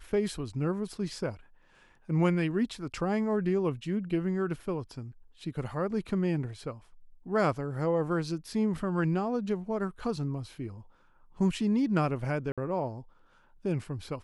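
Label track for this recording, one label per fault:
12.520000	12.580000	gap 56 ms

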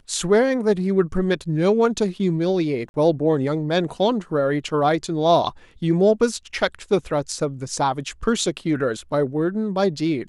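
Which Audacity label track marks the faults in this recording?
2.890000	2.940000	gap 51 ms

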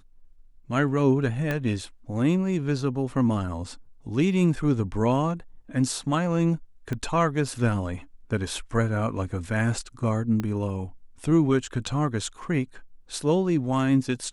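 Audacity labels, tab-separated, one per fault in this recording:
1.510000	1.510000	pop -14 dBFS
6.930000	6.930000	pop -18 dBFS
10.400000	10.400000	pop -16 dBFS

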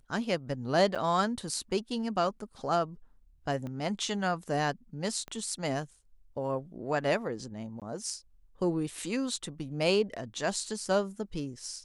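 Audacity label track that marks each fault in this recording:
0.950000	0.960000	gap 6.3 ms
3.670000	3.670000	pop -28 dBFS
5.280000	5.280000	pop -27 dBFS
7.800000	7.820000	gap 17 ms

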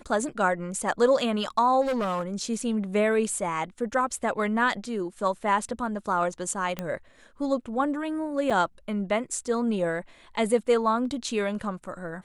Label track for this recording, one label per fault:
1.810000	2.230000	clipped -23.5 dBFS
6.790000	6.790000	pop -16 dBFS
8.500000	8.500000	gap 4.8 ms

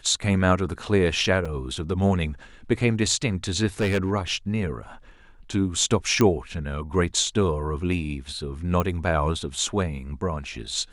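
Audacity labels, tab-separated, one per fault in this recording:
1.450000	1.450000	gap 4.6 ms
3.800000	4.110000	clipped -18.5 dBFS
6.210000	6.210000	pop -8 dBFS
8.800000	8.800000	pop -12 dBFS

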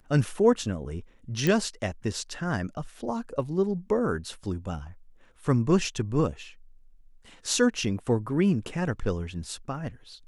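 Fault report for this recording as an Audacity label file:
1.470000	1.470000	pop -12 dBFS

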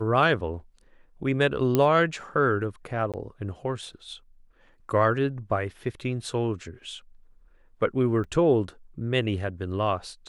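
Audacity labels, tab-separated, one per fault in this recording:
1.750000	1.750000	pop -9 dBFS
3.120000	3.140000	gap 17 ms
8.240000	8.240000	gap 4.8 ms

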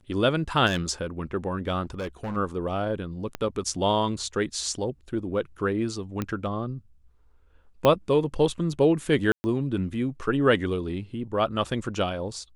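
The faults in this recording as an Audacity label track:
0.660000	0.910000	clipped -20 dBFS
1.830000	2.370000	clipped -28 dBFS
3.350000	3.350000	pop -16 dBFS
6.220000	6.220000	pop -15 dBFS
7.850000	7.850000	pop -8 dBFS
9.320000	9.440000	gap 0.12 s

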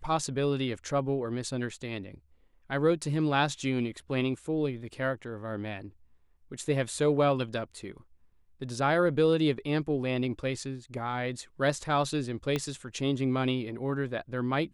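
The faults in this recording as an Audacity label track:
12.560000	12.560000	pop -16 dBFS

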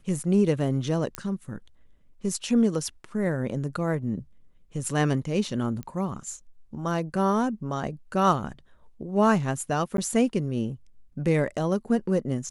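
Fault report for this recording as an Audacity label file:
1.150000	1.150000	pop -14 dBFS
5.830000	5.830000	pop -23 dBFS
9.970000	9.980000	gap 12 ms

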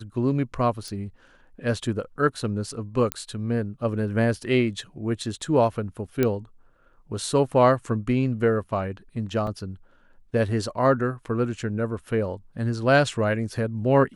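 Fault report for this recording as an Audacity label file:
0.880000	0.880000	pop
3.120000	3.120000	pop -9 dBFS
6.230000	6.230000	pop -9 dBFS
9.470000	9.470000	gap 2.9 ms

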